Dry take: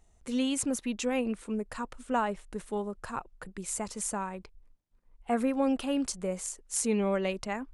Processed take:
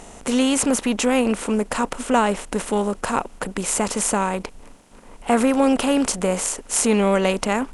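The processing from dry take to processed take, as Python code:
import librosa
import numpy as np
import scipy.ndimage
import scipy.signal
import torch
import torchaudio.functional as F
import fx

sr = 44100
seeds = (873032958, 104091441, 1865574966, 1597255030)

y = fx.bin_compress(x, sr, power=0.6)
y = y * librosa.db_to_amplitude(8.5)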